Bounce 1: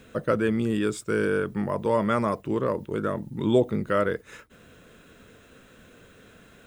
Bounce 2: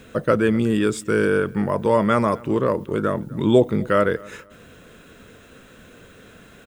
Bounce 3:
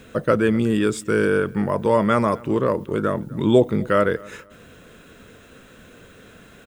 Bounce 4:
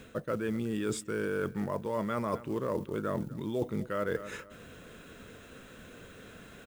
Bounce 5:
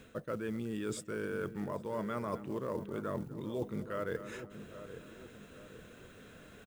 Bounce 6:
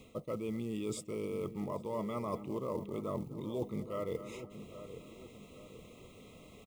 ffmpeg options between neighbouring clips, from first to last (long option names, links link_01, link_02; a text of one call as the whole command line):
ffmpeg -i in.wav -filter_complex "[0:a]asplit=2[link_01][link_02];[link_02]adelay=252,lowpass=frequency=4000:poles=1,volume=-23dB,asplit=2[link_03][link_04];[link_04]adelay=252,lowpass=frequency=4000:poles=1,volume=0.3[link_05];[link_01][link_03][link_05]amix=inputs=3:normalize=0,volume=5.5dB" out.wav
ffmpeg -i in.wav -af anull out.wav
ffmpeg -i in.wav -af "areverse,acompressor=threshold=-25dB:ratio=16,areverse,acrusher=bits=7:mode=log:mix=0:aa=0.000001,volume=-3.5dB" out.wav
ffmpeg -i in.wav -filter_complex "[0:a]asplit=2[link_01][link_02];[link_02]adelay=819,lowpass=frequency=990:poles=1,volume=-10.5dB,asplit=2[link_03][link_04];[link_04]adelay=819,lowpass=frequency=990:poles=1,volume=0.5,asplit=2[link_05][link_06];[link_06]adelay=819,lowpass=frequency=990:poles=1,volume=0.5,asplit=2[link_07][link_08];[link_08]adelay=819,lowpass=frequency=990:poles=1,volume=0.5,asplit=2[link_09][link_10];[link_10]adelay=819,lowpass=frequency=990:poles=1,volume=0.5[link_11];[link_01][link_03][link_05][link_07][link_09][link_11]amix=inputs=6:normalize=0,volume=-5dB" out.wav
ffmpeg -i in.wav -af "asuperstop=centerf=1600:order=20:qfactor=2.5" out.wav